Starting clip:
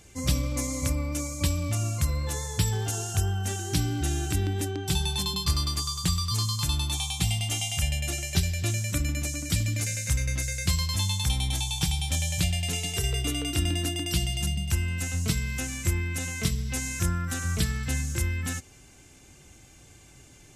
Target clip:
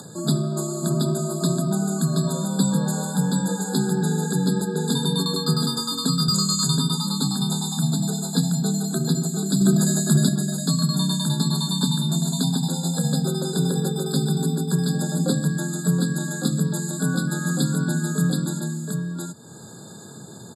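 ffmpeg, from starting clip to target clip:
-filter_complex "[0:a]afreqshift=87,aecho=1:1:725:0.708,acompressor=mode=upward:threshold=0.02:ratio=2.5,asettb=1/sr,asplit=3[s0][s1][s2];[s0]atrim=end=6.284[s3];[s1]atrim=start=6.28:end=6.78,asetpts=PTS-STARTPTS,afade=t=in:d=0.004:c=qsin,afade=t=out:st=0.496:d=0.004:c=qsin,equalizer=f=100:t=o:w=0.67:g=11,equalizer=f=250:t=o:w=0.67:g=-6,equalizer=f=6300:t=o:w=0.67:g=12[s4];[s2]atrim=start=6.776[s5];[s3][s4]acrossfade=d=0.004:c1=hsin:c2=qsin[s6];[s6][s5]acrossfade=d=0.004:c1=qsin:c2=hsin,asettb=1/sr,asplit=3[s7][s8][s9];[s7]atrim=end=9.614[s10];[s8]atrim=start=9.61:end=10.29,asetpts=PTS-STARTPTS,afade=t=in:d=0.004:c=qsin,afade=t=out:st=0.676:d=0.004:c=qsin,acontrast=25[s11];[s9]atrim=start=10.286[s12];[s10][s11]acrossfade=d=0.004:c1=hsin:c2=qsin[s13];[s13][s12]acrossfade=d=0.004:c1=qsin:c2=hsin,asettb=1/sr,asplit=3[s14][s15][s16];[s14]atrim=end=14.944[s17];[s15]atrim=start=14.94:end=15.48,asetpts=PTS-STARTPTS,afade=t=in:d=0.004:c=qsin,afade=t=out:st=0.536:d=0.004:c=qsin,equalizer=f=530:w=2.3:g=10.5[s18];[s16]atrim=start=15.476[s19];[s17][s18]acrossfade=d=0.004:c1=hsin:c2=qsin[s20];[s20][s19]acrossfade=d=0.004:c1=qsin:c2=hsin,afftfilt=real='re*eq(mod(floor(b*sr/1024/1700),2),0)':imag='im*eq(mod(floor(b*sr/1024/1700),2),0)':win_size=1024:overlap=0.75,volume=1.5"

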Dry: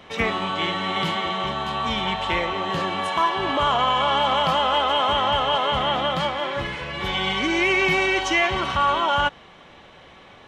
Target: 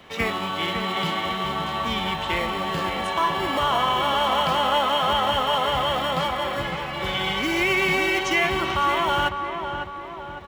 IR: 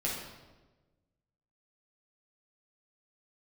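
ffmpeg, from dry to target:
-filter_complex "[0:a]acrossover=split=540|1800[s0][s1][s2];[s0]acrusher=samples=18:mix=1:aa=0.000001[s3];[s3][s1][s2]amix=inputs=3:normalize=0,asplit=2[s4][s5];[s5]adelay=554,lowpass=f=1800:p=1,volume=0.501,asplit=2[s6][s7];[s7]adelay=554,lowpass=f=1800:p=1,volume=0.54,asplit=2[s8][s9];[s9]adelay=554,lowpass=f=1800:p=1,volume=0.54,asplit=2[s10][s11];[s11]adelay=554,lowpass=f=1800:p=1,volume=0.54,asplit=2[s12][s13];[s13]adelay=554,lowpass=f=1800:p=1,volume=0.54,asplit=2[s14][s15];[s15]adelay=554,lowpass=f=1800:p=1,volume=0.54,asplit=2[s16][s17];[s17]adelay=554,lowpass=f=1800:p=1,volume=0.54[s18];[s4][s6][s8][s10][s12][s14][s16][s18]amix=inputs=8:normalize=0,volume=0.841"

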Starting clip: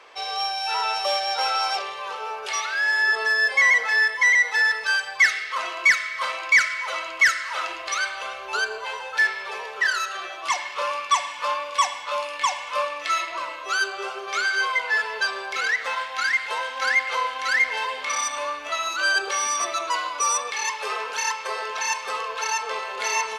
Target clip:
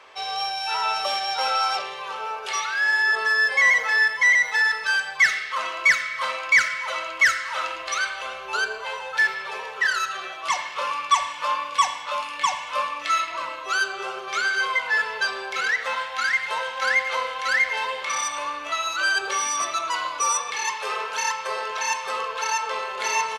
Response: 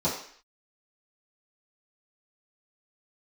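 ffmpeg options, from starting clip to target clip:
-filter_complex "[0:a]asplit=2[s0][s1];[s1]adelay=90,highpass=300,lowpass=3400,asoftclip=type=hard:threshold=0.141,volume=0.178[s2];[s0][s2]amix=inputs=2:normalize=0,asplit=2[s3][s4];[1:a]atrim=start_sample=2205,lowshelf=f=200:g=7.5[s5];[s4][s5]afir=irnorm=-1:irlink=0,volume=0.0794[s6];[s3][s6]amix=inputs=2:normalize=0"

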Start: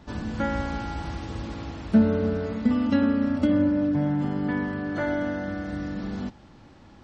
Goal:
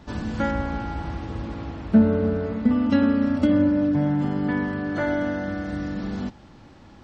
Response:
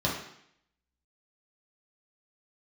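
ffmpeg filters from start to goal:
-filter_complex "[0:a]asettb=1/sr,asplit=3[s0][s1][s2];[s0]atrim=end=0.514[s3];[s1]atrim=start=0.51:end=2.9,asetpts=PTS-STARTPTS,afade=t=in:d=0.004:c=qsin,afade=t=out:st=2.386:d=0.004:c=qsin,highshelf=f=3600:g=-12[s4];[s2]atrim=start=2.896[s5];[s3][s4]acrossfade=d=0.004:c1=hsin:c2=qsin[s6];[s6][s5]acrossfade=d=0.004:c1=qsin:c2=hsin,volume=1.33"

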